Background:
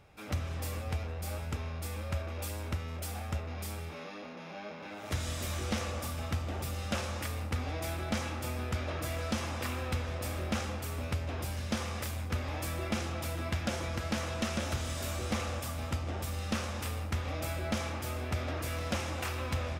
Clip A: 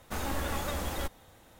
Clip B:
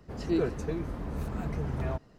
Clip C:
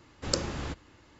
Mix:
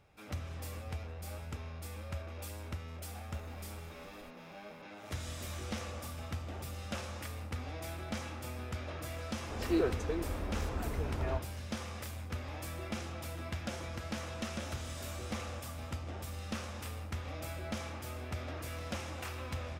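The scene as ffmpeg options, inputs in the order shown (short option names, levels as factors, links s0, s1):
-filter_complex "[0:a]volume=0.501[s0];[1:a]acompressor=threshold=0.00631:ratio=6:attack=3.2:release=140:knee=1:detection=peak[s1];[2:a]equalizer=f=160:w=2:g=-13.5[s2];[s1]atrim=end=1.59,asetpts=PTS-STARTPTS,volume=0.335,afade=t=in:d=0.004:c=hsin,afade=t=out:st=1.586:d=0.004:c=hsin,adelay=3230[s3];[s2]atrim=end=2.18,asetpts=PTS-STARTPTS,volume=0.891,afade=t=in:d=0.004:c=hsin,afade=t=out:st=2.176:d=0.004:c=hsin,adelay=9410[s4];[s0][s3][s4]amix=inputs=3:normalize=0"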